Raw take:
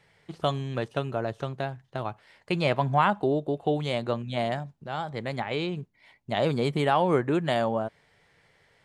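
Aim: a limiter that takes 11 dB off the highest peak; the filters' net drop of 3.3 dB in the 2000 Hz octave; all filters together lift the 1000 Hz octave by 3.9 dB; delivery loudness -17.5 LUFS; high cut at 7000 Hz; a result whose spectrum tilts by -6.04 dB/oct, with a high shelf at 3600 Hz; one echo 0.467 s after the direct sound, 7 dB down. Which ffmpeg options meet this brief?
-af "lowpass=7k,equalizer=f=1k:t=o:g=6.5,equalizer=f=2k:t=o:g=-6,highshelf=f=3.6k:g=-3.5,alimiter=limit=-17dB:level=0:latency=1,aecho=1:1:467:0.447,volume=12dB"

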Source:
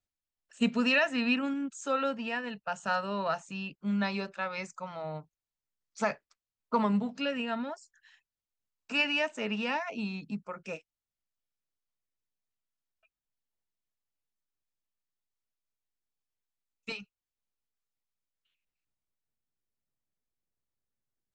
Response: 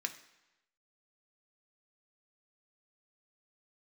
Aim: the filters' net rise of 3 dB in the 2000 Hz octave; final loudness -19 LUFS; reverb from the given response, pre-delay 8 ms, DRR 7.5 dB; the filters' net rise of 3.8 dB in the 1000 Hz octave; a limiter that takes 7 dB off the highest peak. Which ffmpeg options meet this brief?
-filter_complex "[0:a]equalizer=f=1k:t=o:g=4,equalizer=f=2k:t=o:g=3,alimiter=limit=-19dB:level=0:latency=1,asplit=2[a][b];[1:a]atrim=start_sample=2205,adelay=8[c];[b][c]afir=irnorm=-1:irlink=0,volume=-8.5dB[d];[a][d]amix=inputs=2:normalize=0,volume=12dB"

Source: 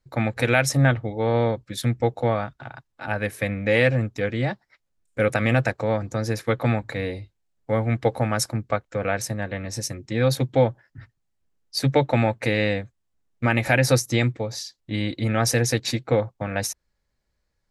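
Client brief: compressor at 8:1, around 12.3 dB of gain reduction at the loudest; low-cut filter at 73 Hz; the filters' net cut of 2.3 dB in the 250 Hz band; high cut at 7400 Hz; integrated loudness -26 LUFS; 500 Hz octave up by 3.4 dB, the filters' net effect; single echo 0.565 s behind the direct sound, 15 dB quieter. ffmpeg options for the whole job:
-af "highpass=73,lowpass=7.4k,equalizer=f=250:t=o:g=-4,equalizer=f=500:t=o:g=4.5,acompressor=threshold=-24dB:ratio=8,aecho=1:1:565:0.178,volume=4dB"

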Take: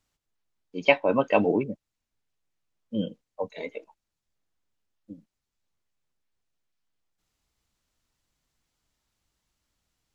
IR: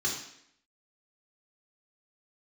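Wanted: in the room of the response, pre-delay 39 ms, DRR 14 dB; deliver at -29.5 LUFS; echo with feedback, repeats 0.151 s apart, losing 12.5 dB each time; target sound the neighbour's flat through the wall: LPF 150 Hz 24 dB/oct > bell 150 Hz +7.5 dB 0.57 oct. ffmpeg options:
-filter_complex "[0:a]aecho=1:1:151|302|453:0.237|0.0569|0.0137,asplit=2[a][b];[1:a]atrim=start_sample=2205,adelay=39[c];[b][c]afir=irnorm=-1:irlink=0,volume=-20.5dB[d];[a][d]amix=inputs=2:normalize=0,lowpass=f=150:w=0.5412,lowpass=f=150:w=1.3066,equalizer=f=150:t=o:w=0.57:g=7.5,volume=11dB"

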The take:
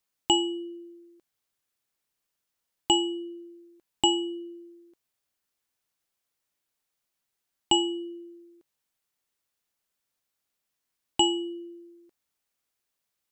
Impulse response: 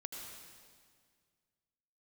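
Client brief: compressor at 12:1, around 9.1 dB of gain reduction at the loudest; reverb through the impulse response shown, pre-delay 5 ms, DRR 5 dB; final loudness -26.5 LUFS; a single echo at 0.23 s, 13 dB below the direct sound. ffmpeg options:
-filter_complex "[0:a]acompressor=threshold=-26dB:ratio=12,aecho=1:1:230:0.224,asplit=2[a][b];[1:a]atrim=start_sample=2205,adelay=5[c];[b][c]afir=irnorm=-1:irlink=0,volume=-3dB[d];[a][d]amix=inputs=2:normalize=0,volume=7.5dB"

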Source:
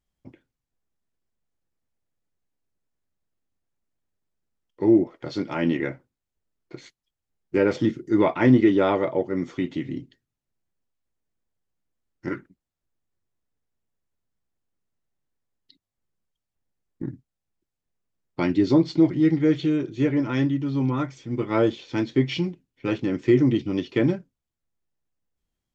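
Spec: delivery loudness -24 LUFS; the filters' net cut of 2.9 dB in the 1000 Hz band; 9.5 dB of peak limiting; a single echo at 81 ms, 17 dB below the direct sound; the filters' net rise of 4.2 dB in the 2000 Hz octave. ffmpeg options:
-af "equalizer=f=1k:t=o:g=-6,equalizer=f=2k:t=o:g=6.5,alimiter=limit=-15dB:level=0:latency=1,aecho=1:1:81:0.141,volume=2.5dB"

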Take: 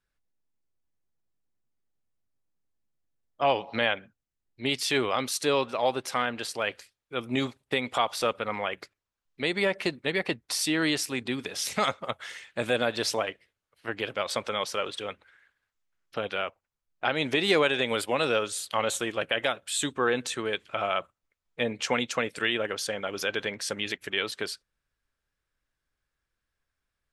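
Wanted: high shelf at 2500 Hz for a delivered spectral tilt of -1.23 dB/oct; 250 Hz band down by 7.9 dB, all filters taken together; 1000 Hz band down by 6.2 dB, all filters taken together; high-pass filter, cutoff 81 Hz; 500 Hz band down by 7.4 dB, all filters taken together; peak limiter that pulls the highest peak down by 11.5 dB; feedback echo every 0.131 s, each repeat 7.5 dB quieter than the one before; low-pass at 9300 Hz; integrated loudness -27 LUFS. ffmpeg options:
-af "highpass=81,lowpass=9.3k,equalizer=f=250:t=o:g=-8,equalizer=f=500:t=o:g=-5,equalizer=f=1k:t=o:g=-8,highshelf=f=2.5k:g=6,alimiter=limit=-20.5dB:level=0:latency=1,aecho=1:1:131|262|393|524|655:0.422|0.177|0.0744|0.0312|0.0131,volume=5dB"

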